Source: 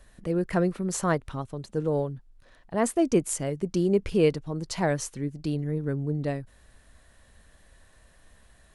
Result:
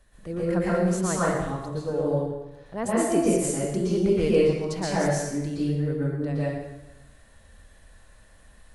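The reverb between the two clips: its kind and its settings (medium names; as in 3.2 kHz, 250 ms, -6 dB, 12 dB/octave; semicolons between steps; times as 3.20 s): plate-style reverb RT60 1 s, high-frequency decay 0.85×, pre-delay 105 ms, DRR -8 dB; trim -6 dB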